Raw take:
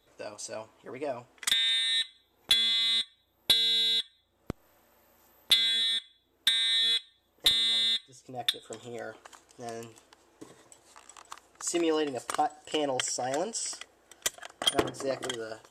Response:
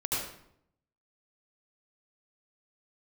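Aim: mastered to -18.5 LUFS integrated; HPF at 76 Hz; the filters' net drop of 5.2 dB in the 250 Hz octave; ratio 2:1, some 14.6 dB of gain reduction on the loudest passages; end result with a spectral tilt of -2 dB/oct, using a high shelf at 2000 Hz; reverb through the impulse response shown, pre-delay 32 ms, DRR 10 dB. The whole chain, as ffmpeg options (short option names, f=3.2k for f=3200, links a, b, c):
-filter_complex "[0:a]highpass=76,equalizer=f=250:t=o:g=-8,highshelf=f=2k:g=6,acompressor=threshold=-43dB:ratio=2,asplit=2[a][b];[1:a]atrim=start_sample=2205,adelay=32[c];[b][c]afir=irnorm=-1:irlink=0,volume=-17dB[d];[a][d]amix=inputs=2:normalize=0,volume=17dB"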